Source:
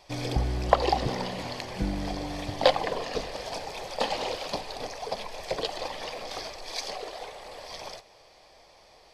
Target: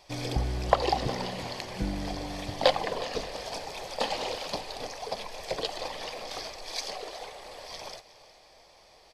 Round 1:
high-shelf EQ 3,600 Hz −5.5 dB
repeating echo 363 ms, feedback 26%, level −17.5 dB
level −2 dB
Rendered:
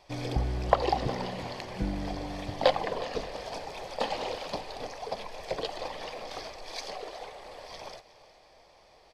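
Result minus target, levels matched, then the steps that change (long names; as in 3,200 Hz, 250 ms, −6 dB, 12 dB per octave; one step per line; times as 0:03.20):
8,000 Hz band −5.5 dB
change: high-shelf EQ 3,600 Hz +3 dB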